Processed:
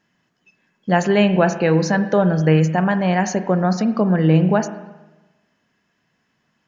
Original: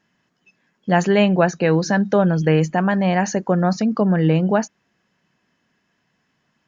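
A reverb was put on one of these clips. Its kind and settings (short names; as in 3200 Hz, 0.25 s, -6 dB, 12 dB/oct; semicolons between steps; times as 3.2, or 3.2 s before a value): spring tank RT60 1.1 s, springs 38/44 ms, chirp 80 ms, DRR 10 dB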